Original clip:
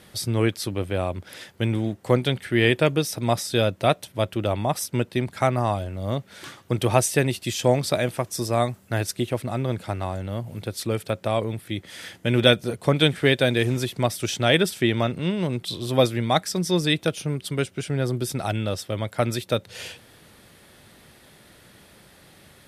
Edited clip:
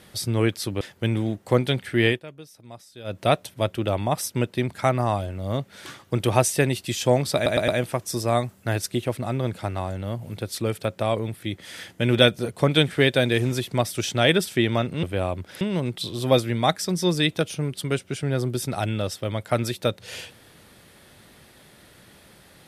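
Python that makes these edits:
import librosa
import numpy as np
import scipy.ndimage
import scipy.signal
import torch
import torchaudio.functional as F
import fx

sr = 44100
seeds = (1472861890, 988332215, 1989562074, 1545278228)

y = fx.edit(x, sr, fx.move(start_s=0.81, length_s=0.58, to_s=15.28),
    fx.fade_down_up(start_s=2.64, length_s=1.13, db=-20.5, fade_s=0.15),
    fx.stutter(start_s=7.93, slice_s=0.11, count=4), tone=tone)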